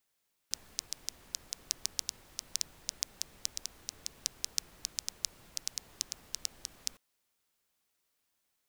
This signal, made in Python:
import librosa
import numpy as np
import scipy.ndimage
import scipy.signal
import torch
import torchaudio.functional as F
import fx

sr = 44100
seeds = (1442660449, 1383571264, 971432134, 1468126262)

y = fx.rain(sr, seeds[0], length_s=6.46, drops_per_s=5.8, hz=5600.0, bed_db=-16)